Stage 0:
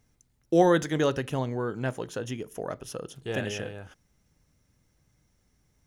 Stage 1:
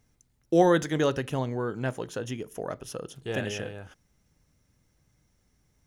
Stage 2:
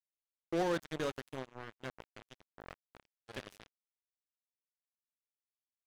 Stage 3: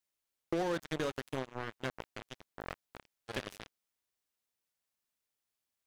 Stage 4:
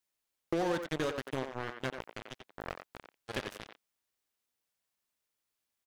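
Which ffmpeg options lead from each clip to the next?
-af anull
-af "asoftclip=type=tanh:threshold=0.0708,acrusher=bits=3:mix=0:aa=0.5,volume=0.668"
-af "acompressor=threshold=0.0112:ratio=6,volume=2.51"
-filter_complex "[0:a]asplit=2[s0][s1];[s1]adelay=90,highpass=300,lowpass=3400,asoftclip=type=hard:threshold=0.0316,volume=0.501[s2];[s0][s2]amix=inputs=2:normalize=0,volume=1.19"

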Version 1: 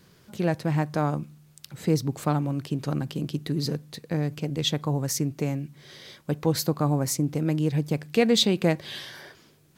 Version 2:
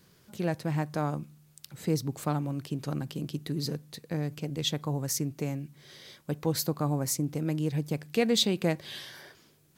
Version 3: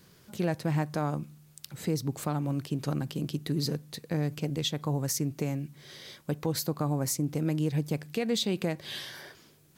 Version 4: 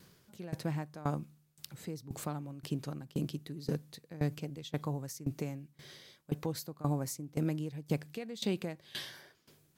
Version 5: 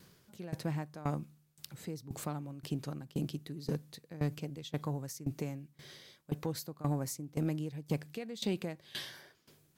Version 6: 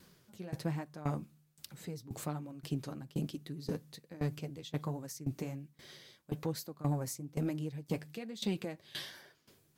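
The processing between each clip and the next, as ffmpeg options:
-af "highshelf=f=6700:g=5.5,volume=0.562"
-af "alimiter=limit=0.075:level=0:latency=1:release=211,volume=1.41"
-af "aeval=exprs='val(0)*pow(10,-19*if(lt(mod(1.9*n/s,1),2*abs(1.9)/1000),1-mod(1.9*n/s,1)/(2*abs(1.9)/1000),(mod(1.9*n/s,1)-2*abs(1.9)/1000)/(1-2*abs(1.9)/1000))/20)':c=same"
-af "asoftclip=type=tanh:threshold=0.0891"
-af "flanger=delay=3:depth=7.7:regen=-36:speed=1.2:shape=triangular,volume=1.41"

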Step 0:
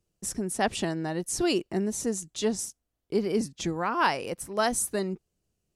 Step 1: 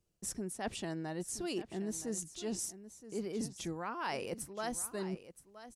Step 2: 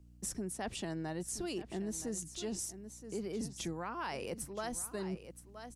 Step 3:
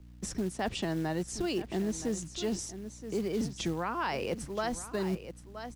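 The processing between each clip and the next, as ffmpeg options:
-af "areverse,acompressor=threshold=0.0224:ratio=6,areverse,aecho=1:1:972:0.2,volume=0.75"
-filter_complex "[0:a]aeval=exprs='val(0)+0.001*(sin(2*PI*60*n/s)+sin(2*PI*2*60*n/s)/2+sin(2*PI*3*60*n/s)/3+sin(2*PI*4*60*n/s)/4+sin(2*PI*5*60*n/s)/5)':c=same,acrossover=split=130[s0][s1];[s1]acompressor=threshold=0.0112:ratio=6[s2];[s0][s2]amix=inputs=2:normalize=0,volume=1.41"
-filter_complex "[0:a]acrossover=split=540[s0][s1];[s0]acrusher=bits=5:mode=log:mix=0:aa=0.000001[s2];[s1]lowpass=5500[s3];[s2][s3]amix=inputs=2:normalize=0,volume=2.24"

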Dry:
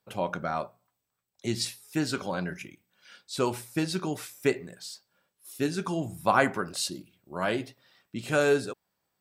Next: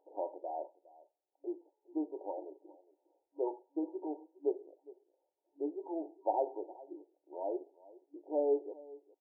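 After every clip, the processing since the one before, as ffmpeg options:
-af "aecho=1:1:411:0.0944,acompressor=mode=upward:threshold=0.00398:ratio=2.5,afftfilt=real='re*between(b*sr/4096,290,950)':imag='im*between(b*sr/4096,290,950)':win_size=4096:overlap=0.75,volume=0.473"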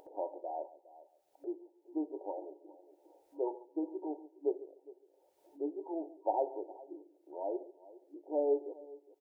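-filter_complex "[0:a]asplit=2[s0][s1];[s1]adelay=141,lowpass=f=800:p=1,volume=0.158,asplit=2[s2][s3];[s3]adelay=141,lowpass=f=800:p=1,volume=0.21[s4];[s0][s2][s4]amix=inputs=3:normalize=0,acompressor=mode=upward:threshold=0.00355:ratio=2.5"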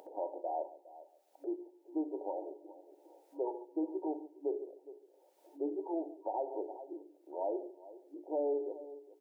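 -af "highpass=f=190:w=0.5412,highpass=f=190:w=1.3066,bandreject=f=60:t=h:w=6,bandreject=f=120:t=h:w=6,bandreject=f=180:t=h:w=6,bandreject=f=240:t=h:w=6,bandreject=f=300:t=h:w=6,bandreject=f=360:t=h:w=6,bandreject=f=420:t=h:w=6,alimiter=level_in=2:limit=0.0631:level=0:latency=1:release=123,volume=0.501,volume=1.5"

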